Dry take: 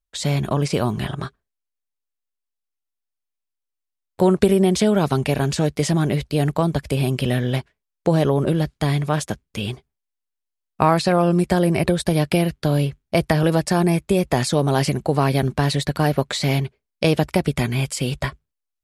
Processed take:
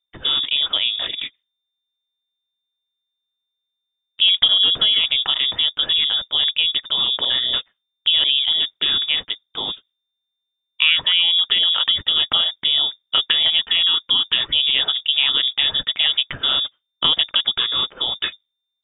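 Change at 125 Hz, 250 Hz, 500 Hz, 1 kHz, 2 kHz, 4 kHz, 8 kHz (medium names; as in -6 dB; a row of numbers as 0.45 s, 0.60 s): under -25 dB, -24.0 dB, -20.0 dB, -9.5 dB, +3.5 dB, +18.5 dB, under -40 dB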